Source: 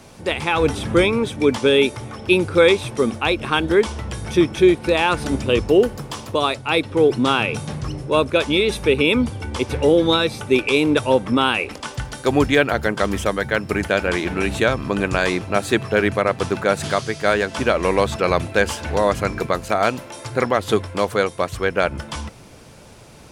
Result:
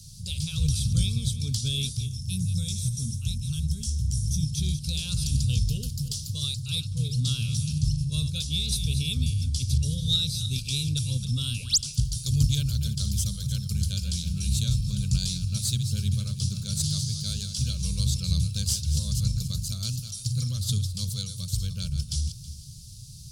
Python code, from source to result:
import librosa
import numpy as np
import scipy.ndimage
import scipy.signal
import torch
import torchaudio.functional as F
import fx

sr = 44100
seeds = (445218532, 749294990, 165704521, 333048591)

y = fx.reverse_delay_fb(x, sr, ms=161, feedback_pct=41, wet_db=-10.0)
y = fx.spec_paint(y, sr, seeds[0], shape='rise', start_s=11.57, length_s=0.21, low_hz=230.0, high_hz=8500.0, level_db=-22.0)
y = scipy.signal.sosfilt(scipy.signal.ellip(3, 1.0, 40, [140.0, 4400.0], 'bandstop', fs=sr, output='sos'), y)
y = fx.spec_box(y, sr, start_s=2.06, length_s=2.4, low_hz=320.0, high_hz=5200.0, gain_db=-9)
y = fx.cheby_harmonics(y, sr, harmonics=(2,), levels_db=(-20,), full_scale_db=-15.0)
y = y * 10.0 ** (4.5 / 20.0)